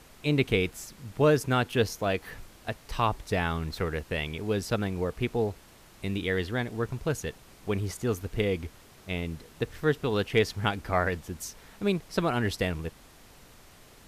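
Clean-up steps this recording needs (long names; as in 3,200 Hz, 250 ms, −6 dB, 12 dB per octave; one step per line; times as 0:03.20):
clipped peaks rebuilt −11.5 dBFS
noise reduction from a noise print 20 dB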